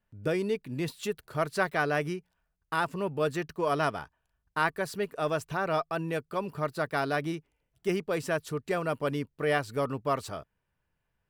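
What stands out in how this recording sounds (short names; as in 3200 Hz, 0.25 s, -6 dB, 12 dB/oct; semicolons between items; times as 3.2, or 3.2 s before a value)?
noise floor -81 dBFS; spectral tilt -4.5 dB/oct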